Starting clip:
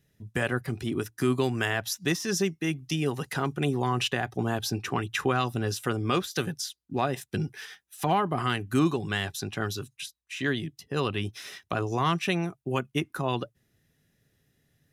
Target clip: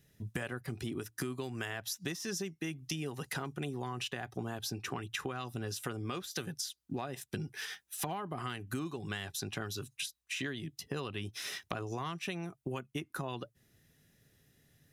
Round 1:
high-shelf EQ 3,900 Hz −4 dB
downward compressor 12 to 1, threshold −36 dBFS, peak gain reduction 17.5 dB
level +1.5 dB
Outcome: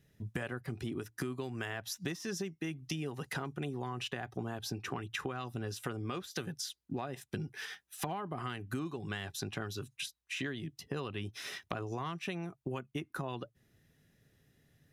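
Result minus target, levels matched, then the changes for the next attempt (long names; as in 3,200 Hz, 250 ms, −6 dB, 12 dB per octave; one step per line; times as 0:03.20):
8,000 Hz band −3.5 dB
change: high-shelf EQ 3,900 Hz +3.5 dB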